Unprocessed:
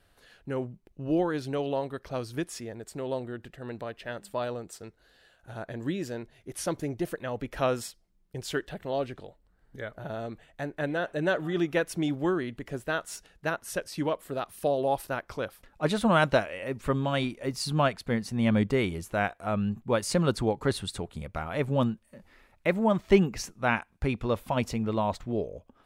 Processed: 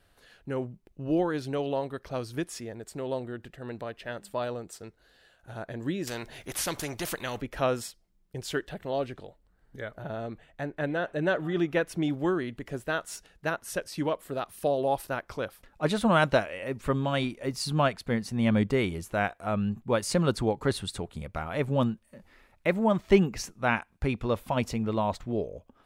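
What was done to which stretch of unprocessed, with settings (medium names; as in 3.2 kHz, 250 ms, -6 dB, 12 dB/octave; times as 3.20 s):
6.07–7.41 s: spectrum-flattening compressor 2:1
10.02–12.10 s: tone controls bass +1 dB, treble -5 dB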